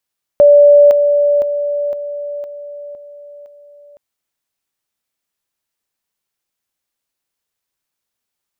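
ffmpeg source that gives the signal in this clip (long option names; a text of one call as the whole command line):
ffmpeg -f lavfi -i "aevalsrc='pow(10,(-3-6*floor(t/0.51))/20)*sin(2*PI*580*t)':duration=3.57:sample_rate=44100" out.wav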